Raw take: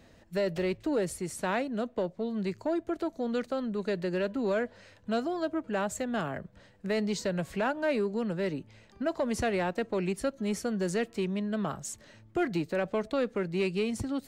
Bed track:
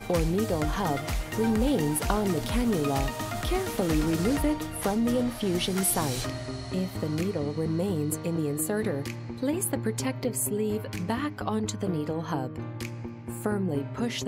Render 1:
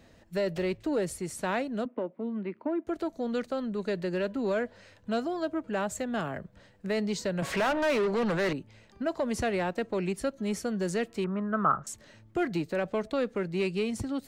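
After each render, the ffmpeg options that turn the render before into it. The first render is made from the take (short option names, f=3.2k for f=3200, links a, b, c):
-filter_complex "[0:a]asettb=1/sr,asplit=3[a][b][c];[a]atrim=end=1.854[d];[b]atrim=start=1.85:end=2.87,asetpts=PTS-STARTPTS,afade=t=in:d=0.004:c=qsin,afade=t=out:st=1.016:d=0.004:c=qsin,highpass=f=220:w=0.5412,highpass=f=220:w=1.3066,equalizer=f=260:t=q:w=4:g=7,equalizer=f=430:t=q:w=4:g=-4,equalizer=f=700:t=q:w=4:g=-6,equalizer=f=1.7k:t=q:w=4:g=-5,lowpass=f=2.4k:w=0.5412,lowpass=f=2.4k:w=1.3066[e];[c]atrim=start=2.866[f];[d][e]acrossfade=d=0.004:c1=hsin:c2=qsin[g];[g][f]acrossfade=d=0.004:c1=qsin:c2=hsin,asettb=1/sr,asplit=3[h][i][j];[h]atrim=end=7.424[k];[i]atrim=start=7.42:end=8.53,asetpts=PTS-STARTPTS,afade=t=in:d=0.004:c=qsin,afade=t=out:st=1.106:d=0.004:c=qsin,asplit=2[l][m];[m]highpass=f=720:p=1,volume=27dB,asoftclip=type=tanh:threshold=-21dB[n];[l][n]amix=inputs=2:normalize=0,lowpass=f=2.7k:p=1,volume=-6dB[o];[j]atrim=start=8.526[p];[k][o]acrossfade=d=0.004:c1=hsin:c2=qsin[q];[q][p]acrossfade=d=0.004:c1=qsin:c2=hsin,asettb=1/sr,asplit=3[r][s][t];[r]atrim=end=11.244[u];[s]atrim=start=11.24:end=11.87,asetpts=PTS-STARTPTS,afade=t=in:d=0.004:c=qsin,afade=t=out:st=0.626:d=0.004:c=qsin,lowpass=f=1.3k:t=q:w=8.5[v];[t]atrim=start=11.866[w];[u][v]acrossfade=d=0.004:c1=hsin:c2=qsin[x];[x][w]acrossfade=d=0.004:c1=qsin:c2=hsin"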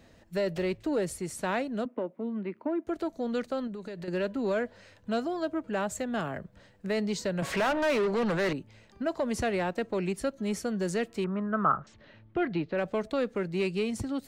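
-filter_complex "[0:a]asettb=1/sr,asplit=3[a][b][c];[a]atrim=end=3.674[d];[b]atrim=start=3.67:end=4.08,asetpts=PTS-STARTPTS,afade=t=in:d=0.004:c=qsin,afade=t=out:st=0.406:d=0.004:c=qsin,acompressor=threshold=-35dB:ratio=12:attack=3.2:release=140:knee=1:detection=peak[e];[c]atrim=start=4.076[f];[d][e]acrossfade=d=0.004:c1=hsin:c2=qsin[g];[g][f]acrossfade=d=0.004:c1=qsin:c2=hsin,asettb=1/sr,asplit=3[h][i][j];[h]atrim=end=11.464[k];[i]atrim=start=11.46:end=12.78,asetpts=PTS-STARTPTS,afade=t=in:d=0.004:c=qsin,afade=t=out:st=1.316:d=0.004:c=qsin,lowpass=f=3.8k:w=0.5412,lowpass=f=3.8k:w=1.3066[l];[j]atrim=start=12.776[m];[k][l]acrossfade=d=0.004:c1=hsin:c2=qsin[n];[n][m]acrossfade=d=0.004:c1=qsin:c2=hsin"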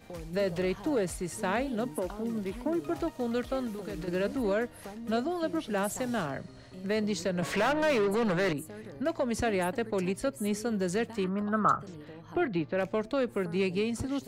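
-filter_complex "[1:a]volume=-16.5dB[a];[0:a][a]amix=inputs=2:normalize=0"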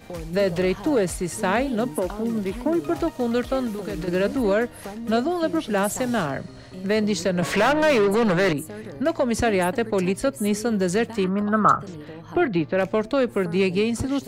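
-af "volume=8dB"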